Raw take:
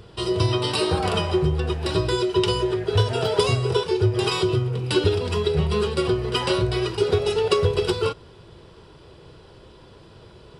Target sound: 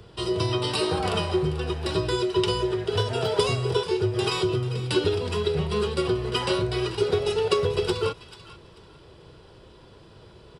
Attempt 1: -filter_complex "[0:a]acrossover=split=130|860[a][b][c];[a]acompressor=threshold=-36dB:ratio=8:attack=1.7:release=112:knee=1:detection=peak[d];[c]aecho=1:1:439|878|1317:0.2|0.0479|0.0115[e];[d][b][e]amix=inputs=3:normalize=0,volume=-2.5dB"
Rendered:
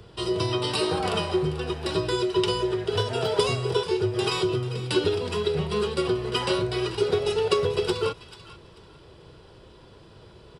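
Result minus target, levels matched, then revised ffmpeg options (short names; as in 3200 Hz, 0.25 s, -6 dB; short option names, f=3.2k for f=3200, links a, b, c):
compressor: peak gain reduction +6.5 dB
-filter_complex "[0:a]acrossover=split=130|860[a][b][c];[a]acompressor=threshold=-28.5dB:ratio=8:attack=1.7:release=112:knee=1:detection=peak[d];[c]aecho=1:1:439|878|1317:0.2|0.0479|0.0115[e];[d][b][e]amix=inputs=3:normalize=0,volume=-2.5dB"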